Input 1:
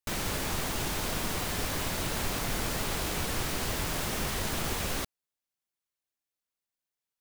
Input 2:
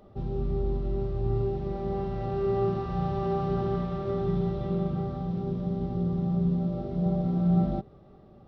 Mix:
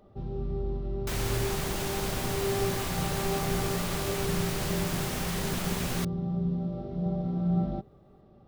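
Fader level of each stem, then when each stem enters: -1.5, -3.5 dB; 1.00, 0.00 s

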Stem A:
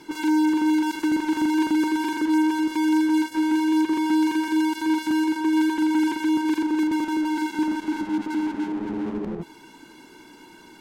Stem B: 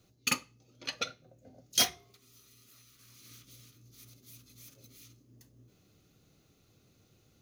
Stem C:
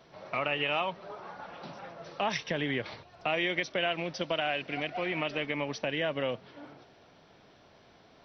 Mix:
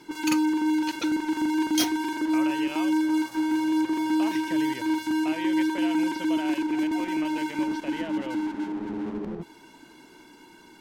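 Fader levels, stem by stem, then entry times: -3.5, -1.5, -7.5 dB; 0.00, 0.00, 2.00 s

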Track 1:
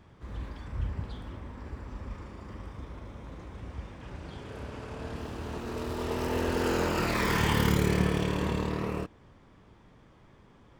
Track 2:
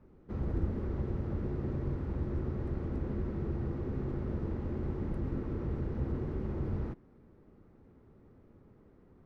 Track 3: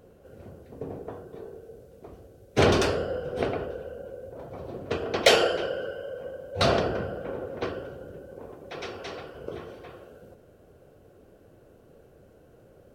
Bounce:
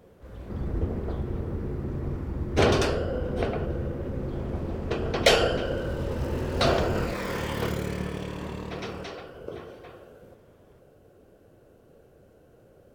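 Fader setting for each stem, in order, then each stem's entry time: -6.0, +3.0, -1.0 dB; 0.00, 0.20, 0.00 s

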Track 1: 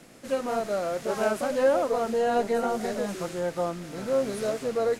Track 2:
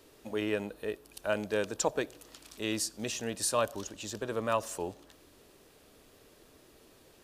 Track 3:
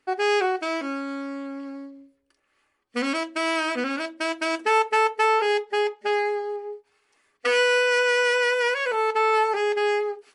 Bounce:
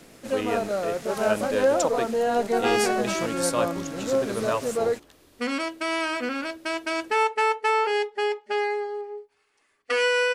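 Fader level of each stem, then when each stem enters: +1.0, +2.5, -2.0 dB; 0.00, 0.00, 2.45 s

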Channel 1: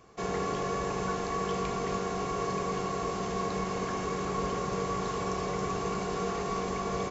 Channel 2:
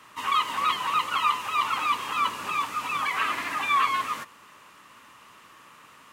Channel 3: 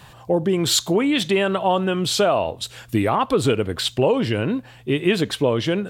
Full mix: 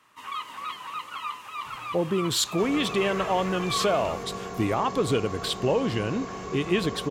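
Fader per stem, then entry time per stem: -3.5, -10.0, -6.0 dB; 2.40, 0.00, 1.65 s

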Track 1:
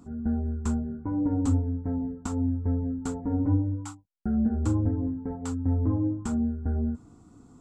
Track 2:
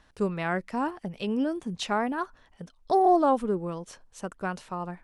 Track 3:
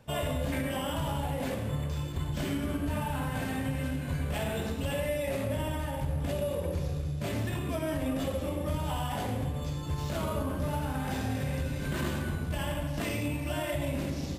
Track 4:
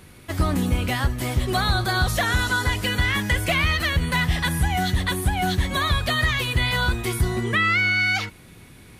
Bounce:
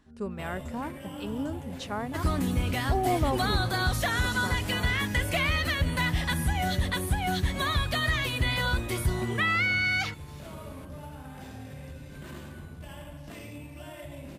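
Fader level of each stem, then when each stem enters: -15.5, -7.0, -10.5, -5.5 dB; 0.00, 0.00, 0.30, 1.85 s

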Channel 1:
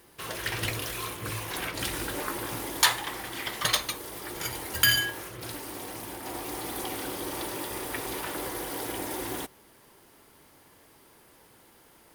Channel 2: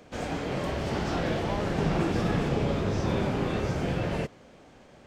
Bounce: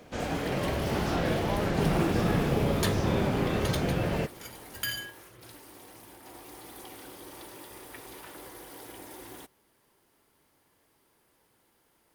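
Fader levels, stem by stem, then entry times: -11.5, +0.5 dB; 0.00, 0.00 s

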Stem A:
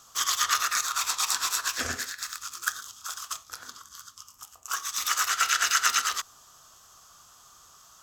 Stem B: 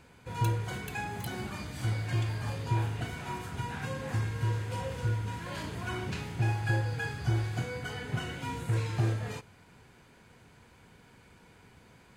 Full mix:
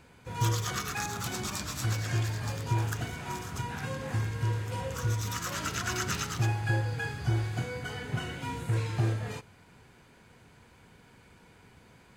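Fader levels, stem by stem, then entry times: -11.0, +0.5 dB; 0.25, 0.00 s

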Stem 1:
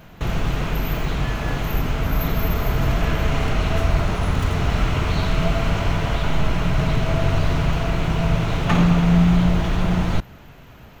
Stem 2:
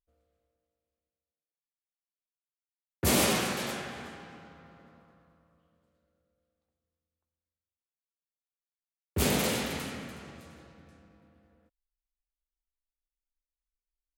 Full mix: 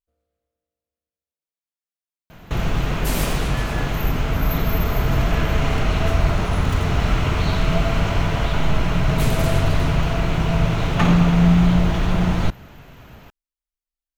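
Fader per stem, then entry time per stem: +1.0, -2.5 dB; 2.30, 0.00 s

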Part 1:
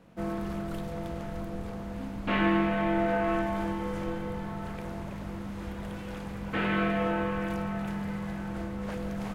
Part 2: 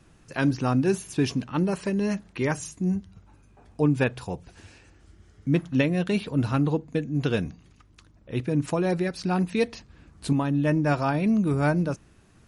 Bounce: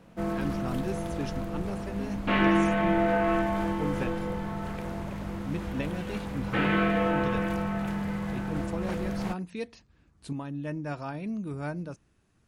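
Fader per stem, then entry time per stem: +2.5, -11.5 dB; 0.00, 0.00 s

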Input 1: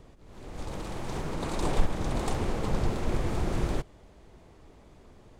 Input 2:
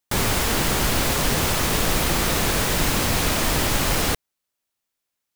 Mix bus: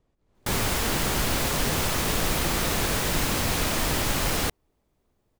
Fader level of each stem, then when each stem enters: -18.5, -4.0 dB; 0.00, 0.35 s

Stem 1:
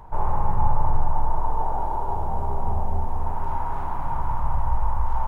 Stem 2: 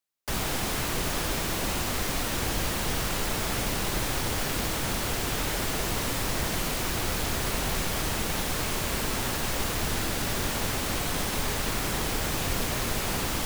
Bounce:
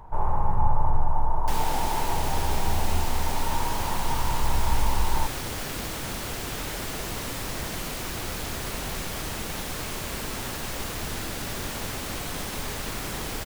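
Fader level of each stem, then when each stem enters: -1.5, -3.5 dB; 0.00, 1.20 s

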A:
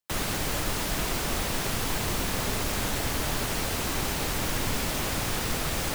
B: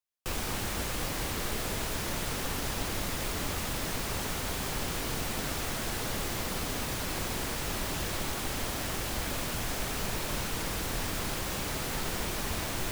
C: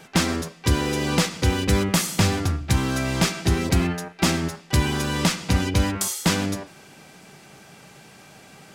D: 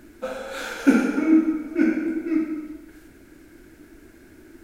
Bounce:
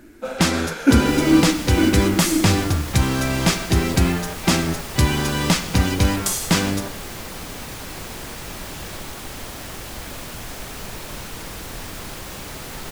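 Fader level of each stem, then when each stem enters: -9.0, 0.0, +2.5, +1.5 dB; 0.80, 0.80, 0.25, 0.00 s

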